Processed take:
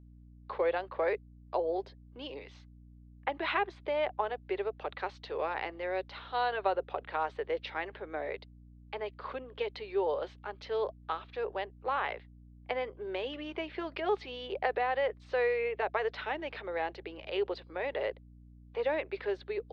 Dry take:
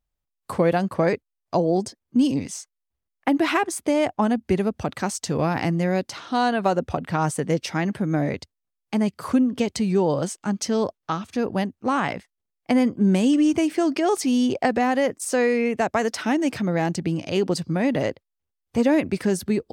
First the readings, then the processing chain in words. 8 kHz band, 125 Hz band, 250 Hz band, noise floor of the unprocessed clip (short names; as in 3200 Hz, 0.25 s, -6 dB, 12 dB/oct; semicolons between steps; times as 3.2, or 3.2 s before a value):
under -35 dB, -24.0 dB, -24.5 dB, -82 dBFS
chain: Chebyshev band-pass 400–3900 Hz, order 4; notch 690 Hz, Q 12; hum 60 Hz, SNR 19 dB; gain -7 dB